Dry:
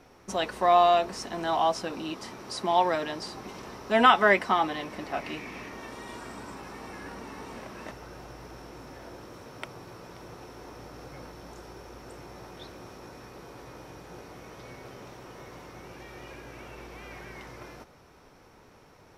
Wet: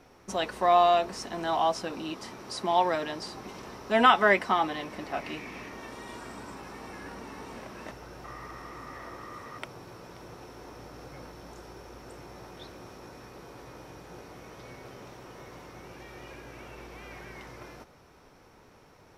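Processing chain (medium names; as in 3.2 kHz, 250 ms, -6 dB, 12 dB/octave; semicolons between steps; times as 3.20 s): 8.24–9.59 s: small resonant body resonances 1.2/1.9 kHz, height 16 dB, ringing for 25 ms; trim -1 dB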